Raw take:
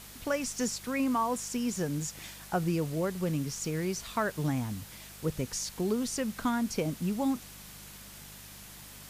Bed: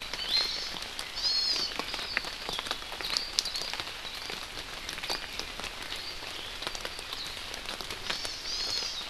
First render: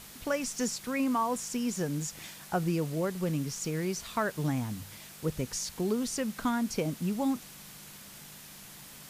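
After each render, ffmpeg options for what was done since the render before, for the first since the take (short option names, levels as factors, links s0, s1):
-af "bandreject=f=50:t=h:w=4,bandreject=f=100:t=h:w=4"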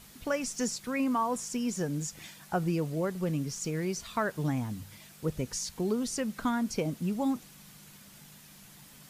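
-af "afftdn=nr=6:nf=-49"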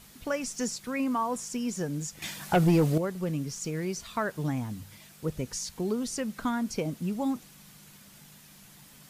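-filter_complex "[0:a]asettb=1/sr,asplit=3[s0][s1][s2];[s0]atrim=end=2.224[s3];[s1]atrim=start=2.22:end=2.98,asetpts=PTS-STARTPTS,afade=t=in:d=0.004:c=qsin,afade=t=out:st=0.756:d=0.004:c=qsin,aeval=exprs='0.15*sin(PI/2*2*val(0)/0.15)':c=same[s4];[s2]atrim=start=2.976[s5];[s3][s4]acrossfade=d=0.004:c1=hsin:c2=qsin[s6];[s6][s5]acrossfade=d=0.004:c1=qsin:c2=hsin"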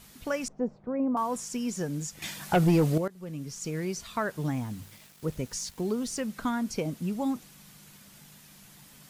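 -filter_complex "[0:a]asettb=1/sr,asplit=3[s0][s1][s2];[s0]atrim=end=0.484[s3];[s1]atrim=start=0.48:end=1.17,asetpts=PTS-STARTPTS,afade=t=in:d=0.004:c=qsin,afade=t=out:st=0.686:d=0.004:c=qsin,lowpass=f=680:t=q:w=1.8[s4];[s2]atrim=start=1.166[s5];[s3][s4]acrossfade=d=0.004:c1=hsin:c2=qsin[s6];[s6][s5]acrossfade=d=0.004:c1=qsin:c2=hsin,asettb=1/sr,asplit=3[s7][s8][s9];[s7]atrim=end=4.394[s10];[s8]atrim=start=4.39:end=6.26,asetpts=PTS-STARTPTS,afade=t=in:d=0.004:c=qsin,afade=t=out:st=1.866:d=0.004:c=qsin,aeval=exprs='val(0)*gte(abs(val(0)),0.00316)':c=same[s11];[s9]atrim=start=6.256[s12];[s10][s11]acrossfade=d=0.004:c1=hsin:c2=qsin[s13];[s13][s12]acrossfade=d=0.004:c1=qsin:c2=hsin,asplit=2[s14][s15];[s14]atrim=end=3.08,asetpts=PTS-STARTPTS,afade=t=out:st=3.076:d=0.004:c=hsin:silence=0.125893[s16];[s15]atrim=start=3.08,asetpts=PTS-STARTPTS,afade=t=in:d=0.65:silence=0.125893[s17];[s16][s17]concat=n=2:v=0:a=1"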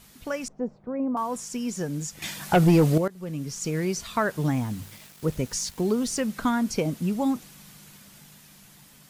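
-af "dynaudnorm=f=640:g=7:m=1.88"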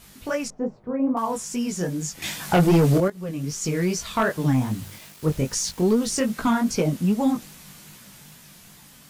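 -af "flanger=delay=17:depth=6.1:speed=2.5,aeval=exprs='0.251*sin(PI/2*1.41*val(0)/0.251)':c=same"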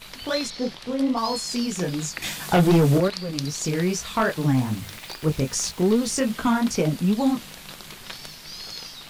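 -filter_complex "[1:a]volume=0.596[s0];[0:a][s0]amix=inputs=2:normalize=0"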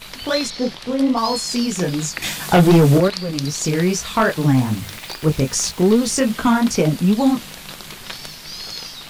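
-af "volume=1.88,alimiter=limit=0.794:level=0:latency=1"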